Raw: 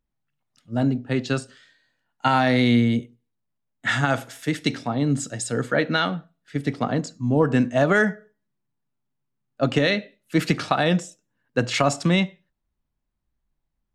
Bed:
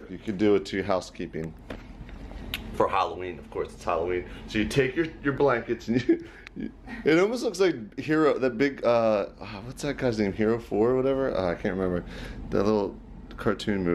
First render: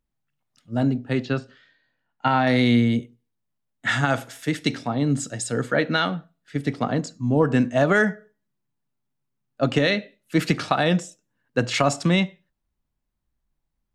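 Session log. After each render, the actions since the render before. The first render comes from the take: 1.25–2.47 air absorption 190 m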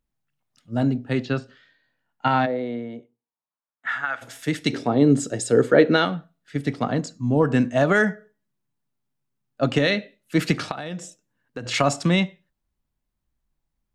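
2.45–4.21 band-pass 480 Hz -> 1700 Hz, Q 2.1; 4.73–6.05 bell 400 Hz +12.5 dB 1 oct; 10.71–11.66 compressor 8:1, threshold -28 dBFS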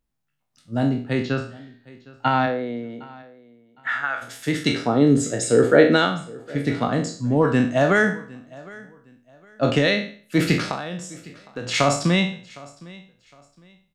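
spectral trails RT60 0.45 s; feedback echo 0.76 s, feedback 28%, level -22 dB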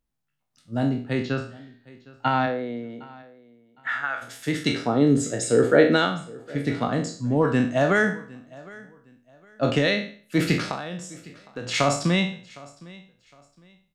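gain -2.5 dB

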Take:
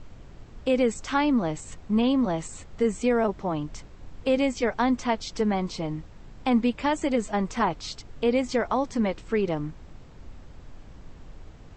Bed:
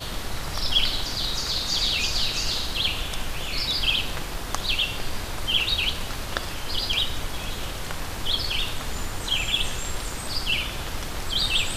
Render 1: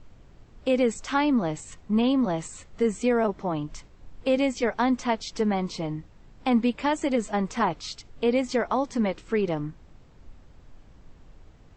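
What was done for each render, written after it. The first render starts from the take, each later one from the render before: noise print and reduce 6 dB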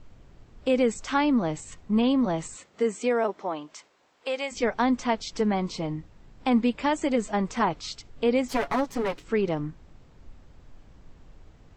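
2.54–4.51 HPF 210 Hz -> 780 Hz; 8.48–9.24 minimum comb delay 7.1 ms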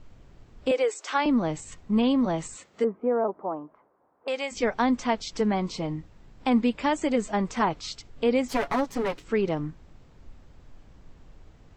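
0.71–1.26 steep high-pass 310 Hz 72 dB/oct; 2.84–4.28 LPF 1200 Hz 24 dB/oct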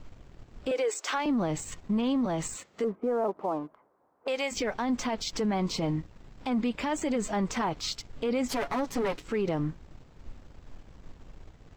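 sample leveller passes 1; limiter -22 dBFS, peak gain reduction 11.5 dB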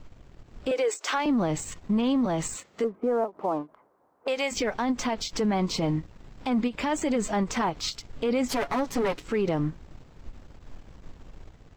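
AGC gain up to 3 dB; ending taper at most 320 dB/s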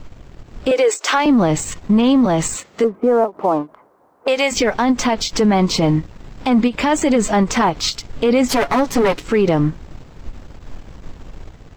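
gain +11 dB

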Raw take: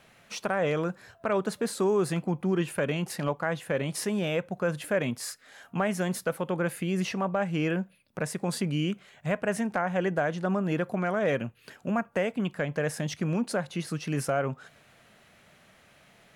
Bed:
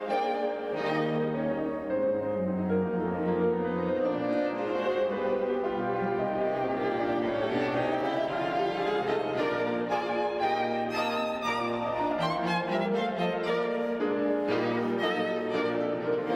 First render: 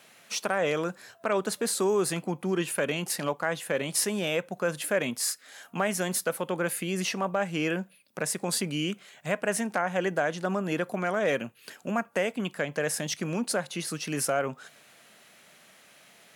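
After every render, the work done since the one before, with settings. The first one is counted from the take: HPF 200 Hz 12 dB/oct; high shelf 3600 Hz +10 dB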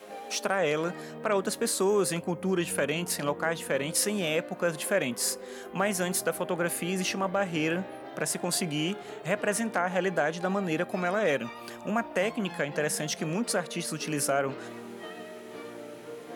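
add bed -13.5 dB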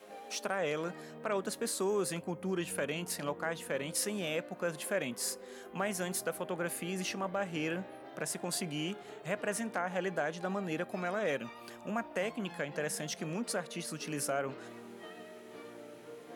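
gain -7 dB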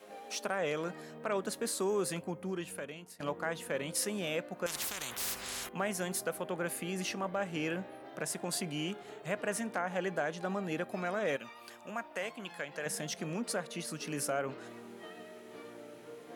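2.21–3.2 fade out, to -20 dB; 4.66–5.69 spectral compressor 10:1; 11.36–12.86 low shelf 470 Hz -10.5 dB

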